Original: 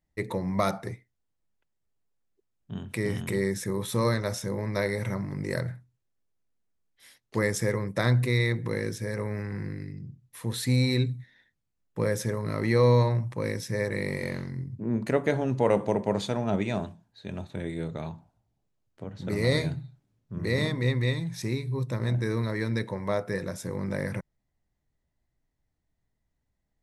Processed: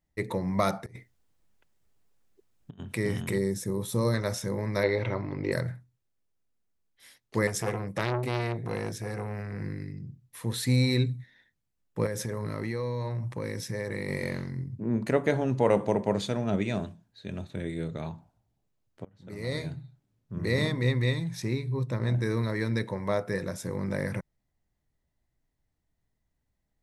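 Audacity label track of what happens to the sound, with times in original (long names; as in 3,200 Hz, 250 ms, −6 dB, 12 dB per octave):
0.860000	2.800000	compressor whose output falls as the input rises −44 dBFS, ratio −0.5
3.380000	4.140000	parametric band 1,900 Hz −10 dB 1.9 octaves
4.830000	5.520000	drawn EQ curve 120 Hz 0 dB, 190 Hz −8 dB, 280 Hz +5 dB, 920 Hz +4 dB, 1,800 Hz −1 dB, 2,700 Hz +7 dB, 4,100 Hz +3 dB, 8,600 Hz −25 dB
7.470000	9.610000	saturating transformer saturates under 1,200 Hz
12.060000	14.090000	downward compressor, threshold −28 dBFS
16.140000	18.010000	parametric band 870 Hz −6 dB 0.76 octaves
19.050000	20.380000	fade in, from −24 dB
21.400000	22.110000	high-shelf EQ 6,300 Hz −8 dB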